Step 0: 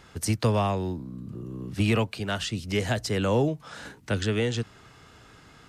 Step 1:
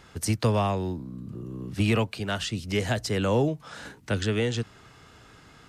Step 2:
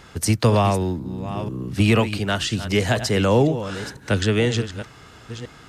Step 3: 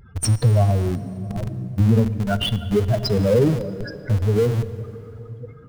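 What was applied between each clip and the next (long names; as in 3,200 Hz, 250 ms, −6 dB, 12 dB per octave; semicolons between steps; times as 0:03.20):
no processing that can be heard
delay that plays each chunk backwards 496 ms, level −11.5 dB; level +6.5 dB
expanding power law on the bin magnitudes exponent 3.7; in parallel at −7 dB: comparator with hysteresis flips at −23 dBFS; on the sum: dense smooth reverb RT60 3.7 s, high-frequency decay 0.65×, DRR 12.5 dB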